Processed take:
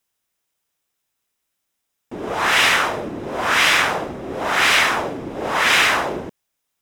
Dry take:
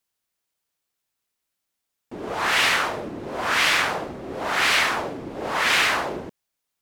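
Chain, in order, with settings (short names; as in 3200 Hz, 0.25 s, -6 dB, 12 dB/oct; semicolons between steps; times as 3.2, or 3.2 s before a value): notch 4400 Hz, Q 10; gain +4.5 dB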